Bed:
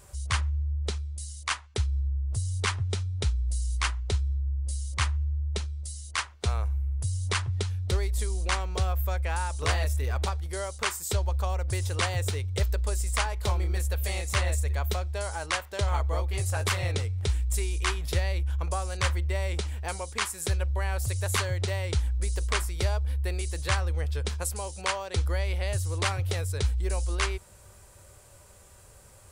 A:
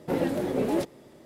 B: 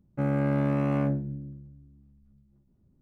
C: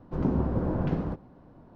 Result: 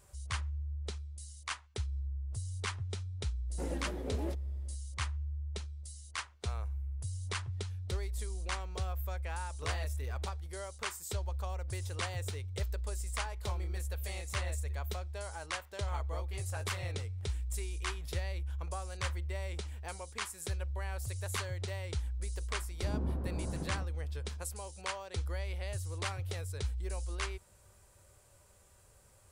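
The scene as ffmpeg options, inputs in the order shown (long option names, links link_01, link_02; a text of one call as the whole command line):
ffmpeg -i bed.wav -i cue0.wav -i cue1.wav -i cue2.wav -filter_complex "[0:a]volume=-9.5dB[link_01];[1:a]atrim=end=1.25,asetpts=PTS-STARTPTS,volume=-13.5dB,afade=type=in:duration=0.004:curve=hsin,afade=type=out:start_time=1.246:duration=0.004:curve=hsin,adelay=3500[link_02];[3:a]atrim=end=1.75,asetpts=PTS-STARTPTS,volume=-12.5dB,afade=type=in:duration=0.004:curve=hsin,afade=type=out:start_time=1.746:duration=0.004:curve=hsin,adelay=22690[link_03];[link_01][link_02][link_03]amix=inputs=3:normalize=0" out.wav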